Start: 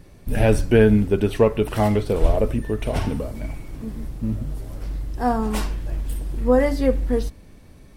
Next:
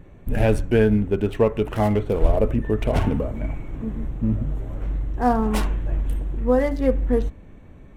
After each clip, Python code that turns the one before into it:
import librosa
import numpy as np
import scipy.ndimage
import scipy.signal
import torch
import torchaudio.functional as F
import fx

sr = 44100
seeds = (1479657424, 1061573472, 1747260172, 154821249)

y = fx.wiener(x, sr, points=9)
y = fx.rider(y, sr, range_db=3, speed_s=0.5)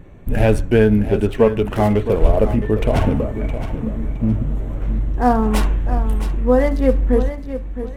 y = fx.echo_feedback(x, sr, ms=665, feedback_pct=25, wet_db=-11)
y = y * 10.0 ** (4.0 / 20.0)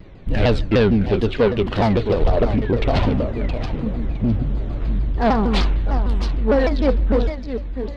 y = 10.0 ** (-9.0 / 20.0) * np.tanh(x / 10.0 ** (-9.0 / 20.0))
y = fx.lowpass_res(y, sr, hz=4300.0, q=4.1)
y = fx.vibrato_shape(y, sr, shape='saw_down', rate_hz=6.6, depth_cents=250.0)